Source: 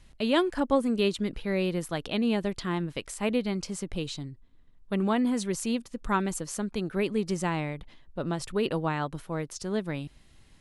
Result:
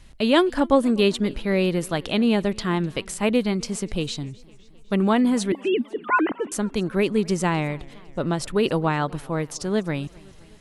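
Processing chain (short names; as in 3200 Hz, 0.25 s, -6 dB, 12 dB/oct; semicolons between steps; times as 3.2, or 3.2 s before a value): 5.52–6.52 sine-wave speech; warbling echo 0.256 s, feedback 62%, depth 178 cents, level -24 dB; gain +6.5 dB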